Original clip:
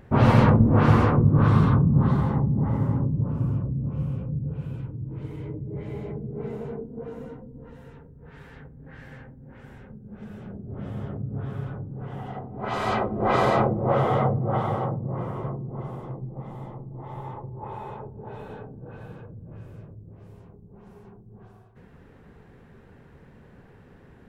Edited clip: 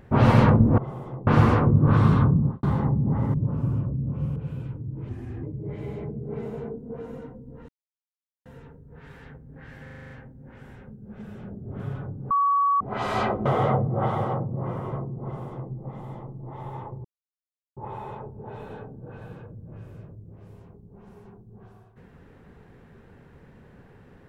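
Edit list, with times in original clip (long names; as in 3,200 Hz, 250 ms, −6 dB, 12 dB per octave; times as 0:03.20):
0:01.84–0:02.14: fade out and dull
0:02.85–0:03.11: remove
0:04.13–0:04.50: remove
0:05.23–0:05.51: play speed 81%
0:07.76: splice in silence 0.77 s
0:09.13: stutter 0.04 s, 8 plays
0:10.82–0:11.51: remove
0:12.02–0:12.52: beep over 1,130 Hz −18 dBFS
0:13.17–0:13.97: remove
0:15.75–0:16.24: duplicate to 0:00.78
0:17.56: splice in silence 0.72 s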